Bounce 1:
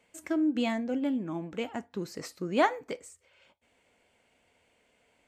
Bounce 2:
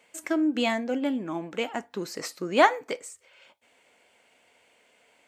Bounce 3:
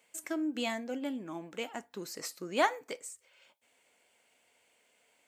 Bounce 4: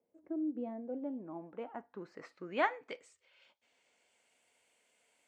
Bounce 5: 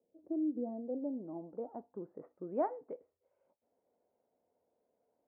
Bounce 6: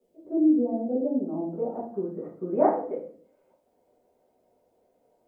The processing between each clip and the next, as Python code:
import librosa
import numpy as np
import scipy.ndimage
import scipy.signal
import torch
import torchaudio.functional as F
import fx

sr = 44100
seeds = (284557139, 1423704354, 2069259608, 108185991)

y1 = fx.highpass(x, sr, hz=470.0, slope=6)
y1 = F.gain(torch.from_numpy(y1), 7.5).numpy()
y2 = fx.high_shelf(y1, sr, hz=6200.0, db=11.0)
y2 = F.gain(torch.from_numpy(y2), -9.0).numpy()
y3 = fx.filter_sweep_lowpass(y2, sr, from_hz=440.0, to_hz=9700.0, start_s=0.56, end_s=4.43, q=1.2)
y3 = F.gain(torch.from_numpy(y3), -4.5).numpy()
y4 = fx.ladder_lowpass(y3, sr, hz=830.0, resonance_pct=20)
y4 = F.gain(torch.from_numpy(y4), 6.0).numpy()
y5 = fx.room_shoebox(y4, sr, seeds[0], volume_m3=47.0, walls='mixed', distance_m=1.6)
y5 = F.gain(torch.from_numpy(y5), 3.0).numpy()